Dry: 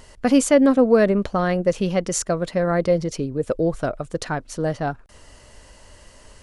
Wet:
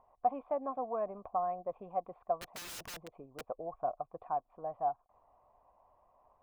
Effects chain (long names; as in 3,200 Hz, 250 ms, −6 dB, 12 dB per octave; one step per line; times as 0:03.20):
formant resonators in series a
0:02.40–0:03.41: wrap-around overflow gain 39.5 dB
harmonic and percussive parts rebalanced harmonic −5 dB
level +1 dB